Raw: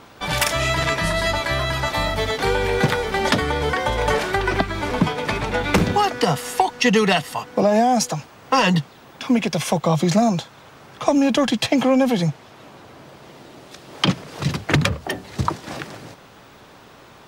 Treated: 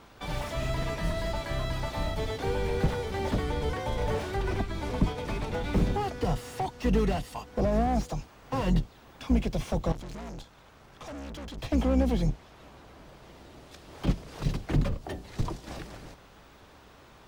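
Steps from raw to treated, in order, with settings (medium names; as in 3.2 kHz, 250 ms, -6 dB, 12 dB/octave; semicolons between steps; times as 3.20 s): octave divider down 2 oct, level +1 dB; dynamic bell 1.6 kHz, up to -6 dB, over -36 dBFS, Q 0.81; 9.92–11.58 s: valve stage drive 30 dB, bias 0.5; slew-rate limiter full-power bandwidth 86 Hz; trim -8.5 dB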